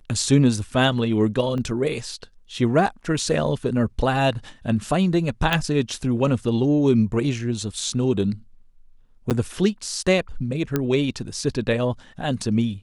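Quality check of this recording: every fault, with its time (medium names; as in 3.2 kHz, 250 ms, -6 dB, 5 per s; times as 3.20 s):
1.58 s: dropout 2.1 ms
5.53 s: pop -7 dBFS
9.30–9.31 s: dropout 8.4 ms
10.76 s: pop -8 dBFS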